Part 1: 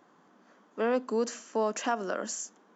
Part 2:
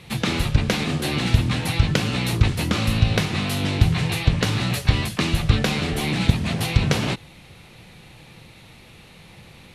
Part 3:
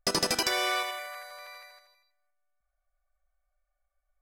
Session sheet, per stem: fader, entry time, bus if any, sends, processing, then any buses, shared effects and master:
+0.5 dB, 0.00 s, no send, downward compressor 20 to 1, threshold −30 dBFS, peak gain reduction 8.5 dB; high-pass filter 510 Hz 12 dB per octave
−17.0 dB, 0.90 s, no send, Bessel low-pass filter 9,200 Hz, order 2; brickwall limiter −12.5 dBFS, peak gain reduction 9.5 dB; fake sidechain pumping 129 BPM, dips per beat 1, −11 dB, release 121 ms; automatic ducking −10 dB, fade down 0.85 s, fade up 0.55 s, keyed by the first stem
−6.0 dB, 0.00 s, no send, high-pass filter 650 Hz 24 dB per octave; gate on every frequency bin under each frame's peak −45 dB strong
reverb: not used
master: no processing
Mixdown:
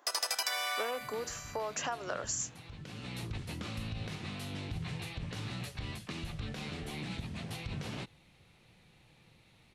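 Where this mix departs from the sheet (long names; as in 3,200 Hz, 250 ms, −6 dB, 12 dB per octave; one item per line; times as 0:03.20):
stem 2: missing fake sidechain pumping 129 BPM, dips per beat 1, −11 dB, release 121 ms
master: extra high-shelf EQ 9,800 Hz +5 dB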